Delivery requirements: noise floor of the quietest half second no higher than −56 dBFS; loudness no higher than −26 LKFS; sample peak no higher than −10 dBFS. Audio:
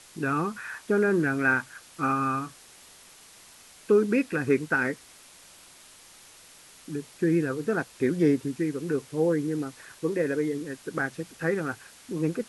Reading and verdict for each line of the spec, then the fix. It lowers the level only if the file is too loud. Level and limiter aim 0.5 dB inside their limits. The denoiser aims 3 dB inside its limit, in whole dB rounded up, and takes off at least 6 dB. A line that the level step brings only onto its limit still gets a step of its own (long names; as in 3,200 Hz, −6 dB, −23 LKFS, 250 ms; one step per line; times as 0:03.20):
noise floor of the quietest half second −52 dBFS: out of spec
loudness −27.5 LKFS: in spec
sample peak −11.5 dBFS: in spec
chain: broadband denoise 7 dB, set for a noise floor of −52 dBFS